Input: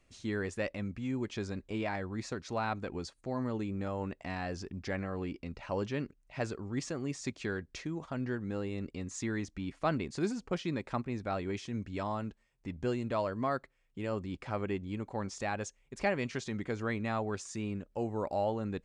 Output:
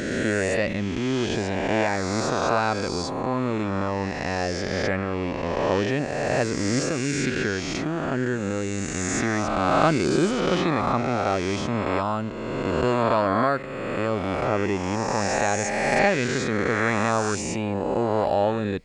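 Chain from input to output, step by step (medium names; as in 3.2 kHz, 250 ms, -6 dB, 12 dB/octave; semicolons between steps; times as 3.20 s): reverse spectral sustain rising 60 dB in 2.27 s; trim +8 dB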